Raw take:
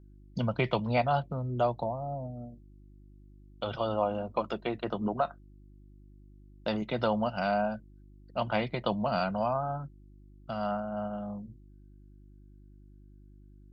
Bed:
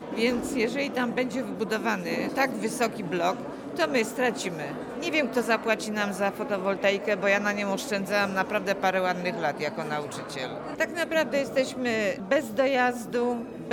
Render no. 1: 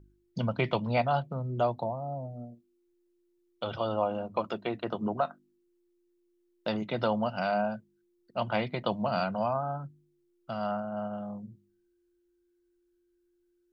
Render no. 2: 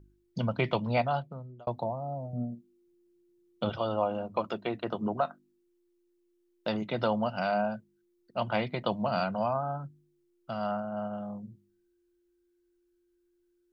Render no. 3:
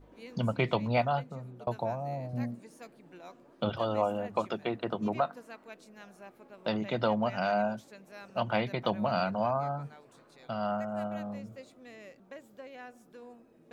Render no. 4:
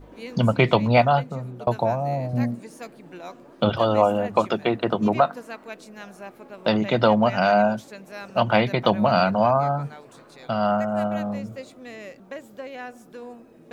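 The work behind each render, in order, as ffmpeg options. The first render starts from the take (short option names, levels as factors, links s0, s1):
-af "bandreject=f=50:t=h:w=4,bandreject=f=100:t=h:w=4,bandreject=f=150:t=h:w=4,bandreject=f=200:t=h:w=4,bandreject=f=250:t=h:w=4,bandreject=f=300:t=h:w=4"
-filter_complex "[0:a]asettb=1/sr,asplit=3[s0][s1][s2];[s0]atrim=end=2.334[s3];[s1]atrim=start=2.33:end=3.7,asetpts=PTS-STARTPTS,afade=t=in:d=0.004:c=qsin,afade=t=out:st=1.366:d=0.004:c=qsin,equalizer=f=180:t=o:w=1.4:g=14[s4];[s2]atrim=start=3.696[s5];[s3][s4]acrossfade=d=0.004:c1=hsin:c2=qsin[s6];[s6][s5]acrossfade=d=0.004:c1=qsin:c2=hsin,asplit=2[s7][s8];[s7]atrim=end=1.67,asetpts=PTS-STARTPTS,afade=t=out:st=0.97:d=0.7[s9];[s8]atrim=start=1.67,asetpts=PTS-STARTPTS,afade=t=in:d=0.004:c=hsin[s10];[s9][s10]concat=n=2:v=0:a=1"
-filter_complex "[1:a]volume=0.0668[s0];[0:a][s0]amix=inputs=2:normalize=0"
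-af "volume=3.35"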